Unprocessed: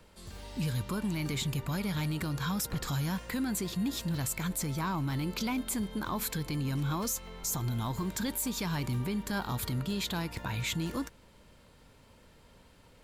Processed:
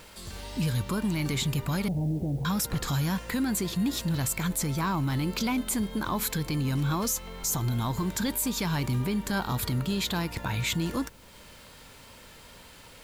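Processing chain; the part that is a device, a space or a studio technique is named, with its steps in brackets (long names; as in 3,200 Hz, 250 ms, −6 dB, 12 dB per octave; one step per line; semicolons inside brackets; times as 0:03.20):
0:01.88–0:02.45: Butterworth low-pass 790 Hz 72 dB per octave
noise-reduction cassette on a plain deck (one half of a high-frequency compander encoder only; tape wow and flutter 29 cents; white noise bed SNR 32 dB)
level +4.5 dB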